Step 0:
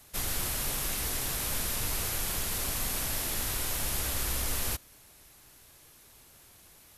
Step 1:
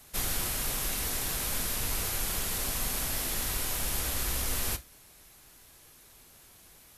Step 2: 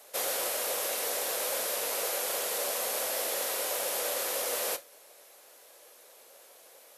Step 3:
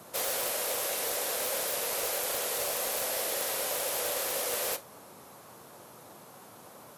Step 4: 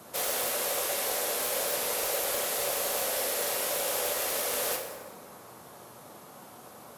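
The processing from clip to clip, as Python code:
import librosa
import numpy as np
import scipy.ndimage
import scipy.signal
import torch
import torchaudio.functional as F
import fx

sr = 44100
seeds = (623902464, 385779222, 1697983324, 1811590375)

y1 = fx.rider(x, sr, range_db=10, speed_s=0.5)
y1 = fx.rev_gated(y1, sr, seeds[0], gate_ms=90, shape='falling', drr_db=10.0)
y2 = fx.highpass_res(y1, sr, hz=530.0, q=4.9)
y3 = fx.dmg_noise_band(y2, sr, seeds[1], low_hz=100.0, high_hz=1200.0, level_db=-53.0)
y3 = (np.mod(10.0 ** (22.0 / 20.0) * y3 + 1.0, 2.0) - 1.0) / 10.0 ** (22.0 / 20.0)
y4 = fx.rev_plate(y3, sr, seeds[2], rt60_s=1.8, hf_ratio=0.55, predelay_ms=0, drr_db=2.5)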